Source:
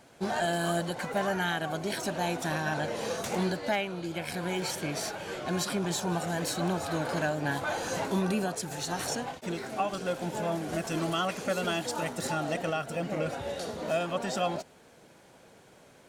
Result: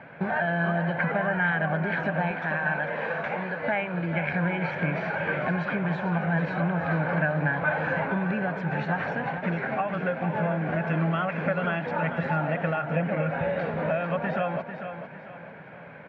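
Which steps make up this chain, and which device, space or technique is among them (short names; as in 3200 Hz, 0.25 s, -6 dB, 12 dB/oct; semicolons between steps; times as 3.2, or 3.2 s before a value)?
bass amplifier (compressor 5:1, threshold -36 dBFS, peak gain reduction 11 dB; speaker cabinet 81–2400 Hz, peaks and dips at 160 Hz +10 dB, 350 Hz -6 dB, 570 Hz +4 dB, 900 Hz +3 dB, 1600 Hz +9 dB, 2300 Hz +7 dB); 2.31–3.6 low shelf 300 Hz -11 dB; feedback echo 0.447 s, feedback 37%, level -9 dB; gain +8 dB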